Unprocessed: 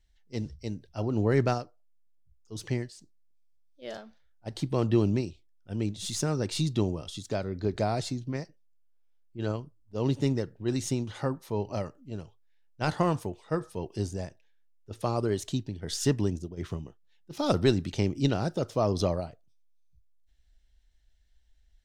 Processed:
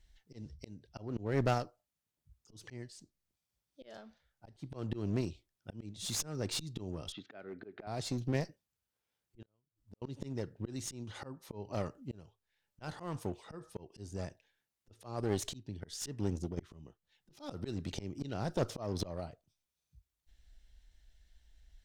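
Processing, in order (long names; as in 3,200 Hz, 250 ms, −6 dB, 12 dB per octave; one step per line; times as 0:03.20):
volume swells 612 ms
0:07.12–0:07.87: loudspeaker in its box 300–2,800 Hz, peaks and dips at 540 Hz −5 dB, 980 Hz −8 dB, 1,500 Hz +4 dB
asymmetric clip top −42 dBFS
0:09.42–0:10.02: gate with flip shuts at −48 dBFS, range −35 dB
level +4 dB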